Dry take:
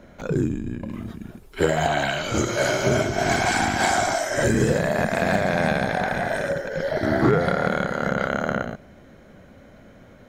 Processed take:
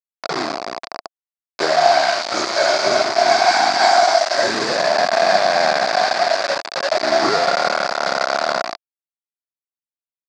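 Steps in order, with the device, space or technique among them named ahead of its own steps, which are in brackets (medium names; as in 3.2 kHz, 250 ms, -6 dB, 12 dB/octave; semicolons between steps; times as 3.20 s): hand-held game console (bit crusher 4-bit; cabinet simulation 440–5900 Hz, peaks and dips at 480 Hz -6 dB, 690 Hz +9 dB, 1.1 kHz +4 dB, 3 kHz -8 dB, 4.7 kHz +10 dB); trim +3.5 dB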